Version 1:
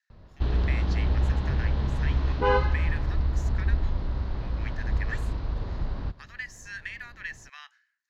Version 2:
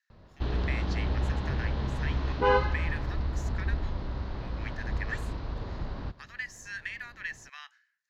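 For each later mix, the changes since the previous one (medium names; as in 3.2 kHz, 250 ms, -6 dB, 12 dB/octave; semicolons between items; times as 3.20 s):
master: add bass shelf 100 Hz -7.5 dB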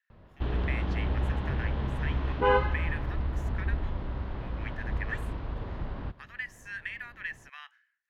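master: add high-order bell 5.4 kHz -10.5 dB 1.1 oct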